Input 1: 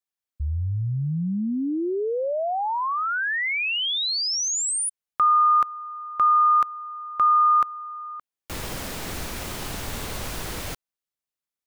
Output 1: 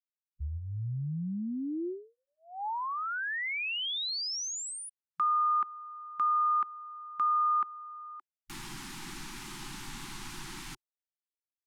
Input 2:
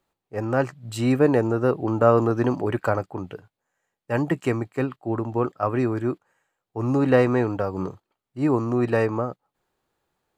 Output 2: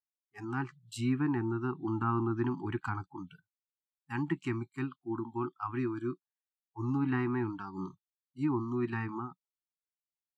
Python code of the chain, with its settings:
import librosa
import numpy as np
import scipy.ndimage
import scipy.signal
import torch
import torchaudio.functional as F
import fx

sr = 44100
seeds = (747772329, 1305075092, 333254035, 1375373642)

y = fx.noise_reduce_blind(x, sr, reduce_db=29)
y = fx.env_lowpass_down(y, sr, base_hz=2100.0, full_db=-16.0)
y = scipy.signal.sosfilt(scipy.signal.ellip(3, 1.0, 50, [360.0, 830.0], 'bandstop', fs=sr, output='sos'), y)
y = y * librosa.db_to_amplitude(-8.0)